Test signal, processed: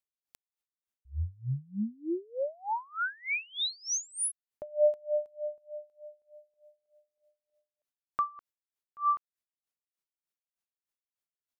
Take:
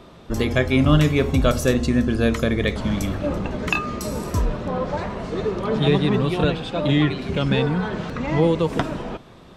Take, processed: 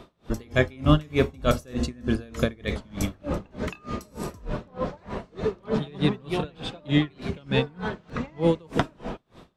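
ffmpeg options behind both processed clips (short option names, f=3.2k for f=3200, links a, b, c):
-af "aeval=exprs='val(0)*pow(10,-29*(0.5-0.5*cos(2*PI*3.3*n/s))/20)':c=same"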